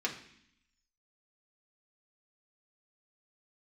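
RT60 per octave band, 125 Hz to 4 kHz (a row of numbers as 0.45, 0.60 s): 0.90, 1.0, 0.60, 0.65, 0.85, 0.85 s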